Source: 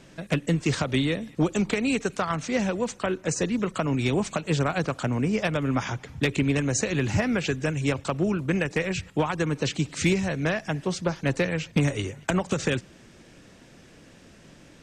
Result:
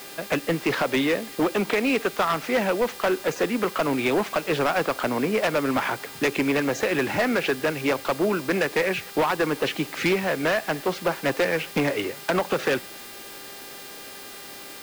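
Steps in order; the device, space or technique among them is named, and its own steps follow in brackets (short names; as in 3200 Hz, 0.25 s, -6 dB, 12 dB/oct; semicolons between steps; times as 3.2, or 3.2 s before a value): aircraft radio (BPF 380–2400 Hz; hard clip -26 dBFS, distortion -11 dB; buzz 400 Hz, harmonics 13, -54 dBFS -1 dB/oct; white noise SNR 18 dB); gain +8.5 dB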